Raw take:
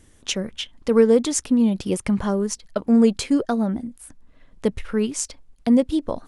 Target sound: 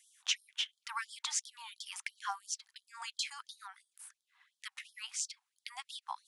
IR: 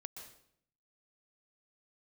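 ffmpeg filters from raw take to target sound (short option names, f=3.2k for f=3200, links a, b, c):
-filter_complex "[0:a]acrossover=split=6900[a][b];[b]acompressor=threshold=-45dB:ratio=4:attack=1:release=60[c];[a][c]amix=inputs=2:normalize=0,afftfilt=real='re*gte(b*sr/1024,720*pow(3200/720,0.5+0.5*sin(2*PI*2.9*pts/sr)))':imag='im*gte(b*sr/1024,720*pow(3200/720,0.5+0.5*sin(2*PI*2.9*pts/sr)))':win_size=1024:overlap=0.75,volume=-4.5dB"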